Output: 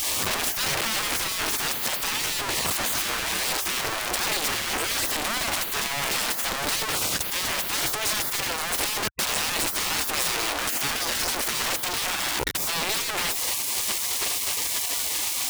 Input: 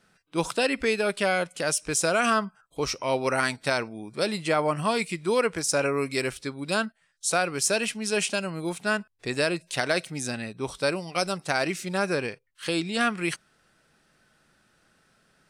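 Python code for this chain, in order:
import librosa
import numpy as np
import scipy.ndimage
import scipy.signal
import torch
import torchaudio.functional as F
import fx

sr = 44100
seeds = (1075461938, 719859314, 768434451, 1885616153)

y = np.sign(x) * np.sqrt(np.mean(np.square(x)))
y = fx.spec_gate(y, sr, threshold_db=-15, keep='weak')
y = fx.peak_eq(y, sr, hz=220.0, db=2.5, octaves=2.9)
y = y * librosa.db_to_amplitude(7.5)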